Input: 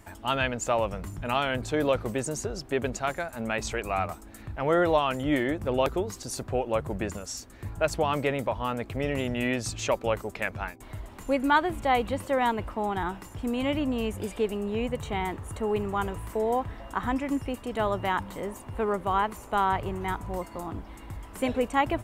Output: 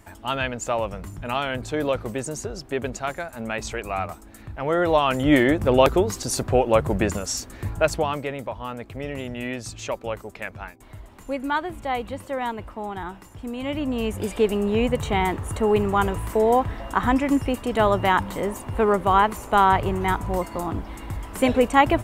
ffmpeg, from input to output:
-af "volume=9.44,afade=t=in:st=4.78:d=0.59:silence=0.398107,afade=t=out:st=7.54:d=0.68:silence=0.266073,afade=t=in:st=13.59:d=0.97:silence=0.298538"

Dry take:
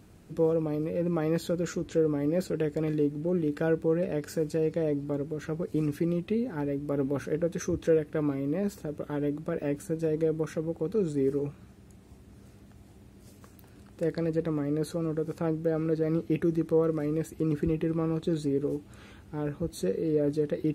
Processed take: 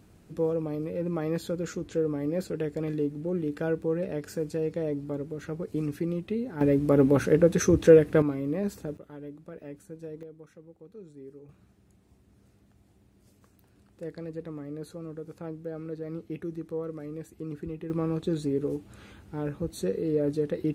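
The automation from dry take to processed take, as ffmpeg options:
-af "asetnsamples=n=441:p=0,asendcmd='6.61 volume volume 8.5dB;8.22 volume volume 0dB;8.97 volume volume -12dB;10.23 volume volume -19dB;11.49 volume volume -9dB;17.9 volume volume 0dB',volume=0.794"

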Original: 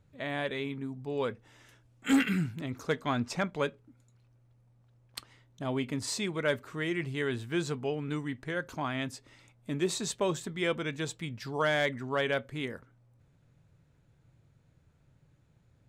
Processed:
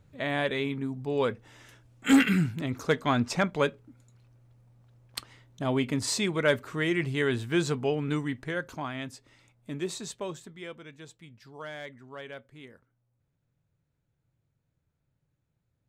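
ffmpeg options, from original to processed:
-af "volume=1.78,afade=t=out:st=8.12:d=0.81:silence=0.421697,afade=t=out:st=9.76:d=0.98:silence=0.316228"

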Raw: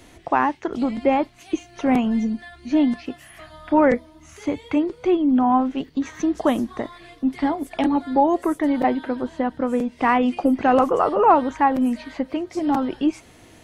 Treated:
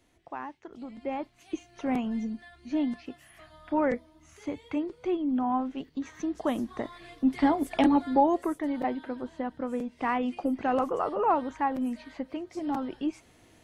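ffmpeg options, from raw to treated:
-af "volume=0.944,afade=t=in:st=0.87:d=0.67:silence=0.354813,afade=t=in:st=6.42:d=1.27:silence=0.334965,afade=t=out:st=7.69:d=0.91:silence=0.334965"

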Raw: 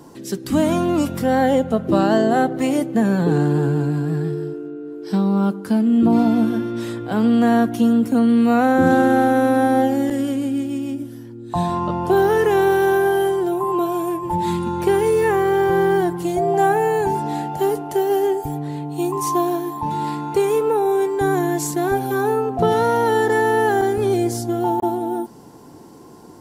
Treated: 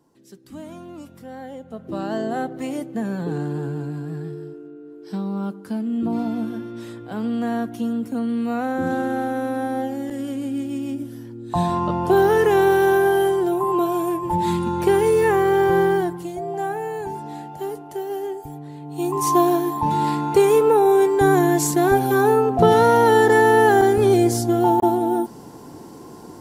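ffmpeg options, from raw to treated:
-af "volume=4.22,afade=t=in:st=1.6:d=0.64:silence=0.281838,afade=t=in:st=10.05:d=1.18:silence=0.375837,afade=t=out:st=15.78:d=0.53:silence=0.334965,afade=t=in:st=18.8:d=0.58:silence=0.237137"

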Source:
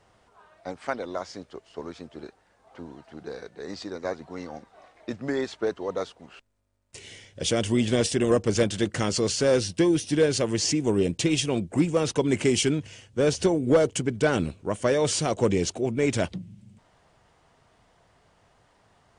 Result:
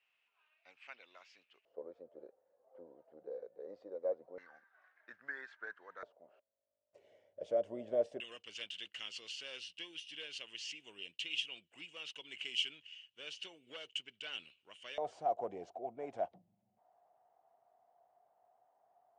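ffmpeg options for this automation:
-af "asetnsamples=n=441:p=0,asendcmd='1.65 bandpass f 530;4.38 bandpass f 1600;6.03 bandpass f 600;8.2 bandpass f 2900;14.98 bandpass f 720',bandpass=f=2600:t=q:w=9.1:csg=0"

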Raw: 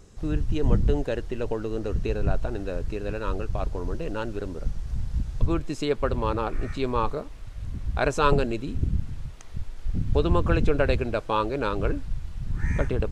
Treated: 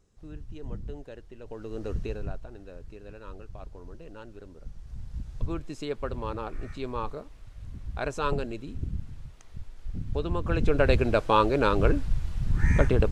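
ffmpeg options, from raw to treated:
-af "volume=5.01,afade=t=in:st=1.44:d=0.47:silence=0.251189,afade=t=out:st=1.91:d=0.5:silence=0.298538,afade=t=in:st=4.59:d=0.82:silence=0.446684,afade=t=in:st=10.42:d=0.7:silence=0.281838"

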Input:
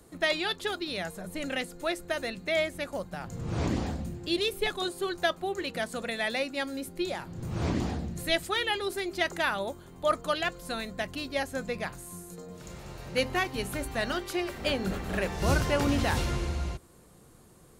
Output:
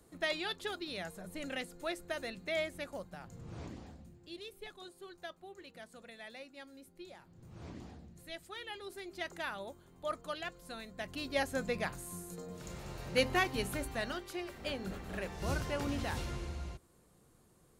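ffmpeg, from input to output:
-af "volume=2.99,afade=t=out:st=2.8:d=0.95:silence=0.266073,afade=t=in:st=8.34:d=1.01:silence=0.421697,afade=t=in:st=10.93:d=0.48:silence=0.334965,afade=t=out:st=13.5:d=0.72:silence=0.398107"

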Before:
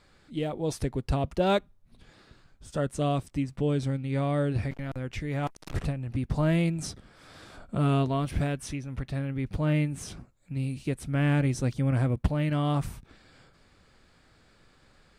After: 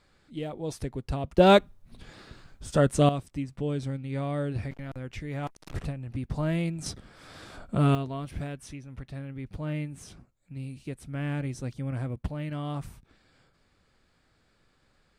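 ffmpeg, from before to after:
-af "asetnsamples=n=441:p=0,asendcmd='1.38 volume volume 7dB;3.09 volume volume -3.5dB;6.86 volume volume 2.5dB;7.95 volume volume -7dB',volume=0.631"

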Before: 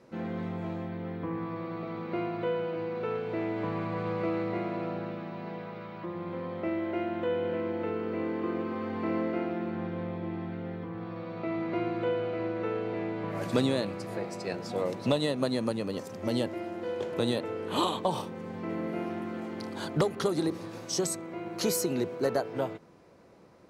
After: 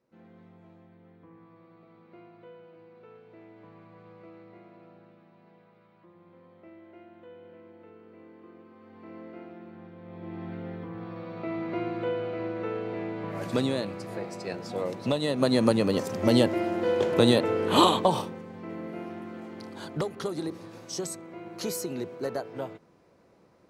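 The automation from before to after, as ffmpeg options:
-af "volume=2.66,afade=t=in:st=8.78:d=0.62:silence=0.473151,afade=t=in:st=10.02:d=0.5:silence=0.251189,afade=t=in:st=15.22:d=0.45:silence=0.354813,afade=t=out:st=17.87:d=0.59:silence=0.237137"

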